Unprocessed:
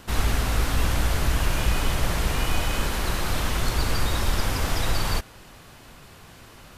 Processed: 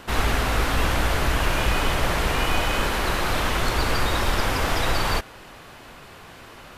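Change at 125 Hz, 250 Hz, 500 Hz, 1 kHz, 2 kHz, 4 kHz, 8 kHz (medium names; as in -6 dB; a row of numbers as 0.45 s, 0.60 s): -1.0 dB, +2.5 dB, +5.5 dB, +6.0 dB, +5.5 dB, +3.0 dB, -0.5 dB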